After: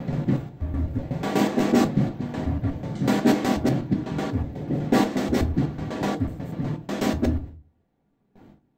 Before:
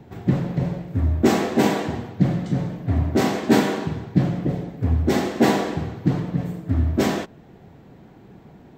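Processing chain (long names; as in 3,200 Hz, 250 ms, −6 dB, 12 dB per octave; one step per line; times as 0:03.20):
slices reordered back to front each 123 ms, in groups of 5
noise gate with hold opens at −35 dBFS
on a send: convolution reverb RT60 0.30 s, pre-delay 3 ms, DRR 5.5 dB
on the sum: level −4 dB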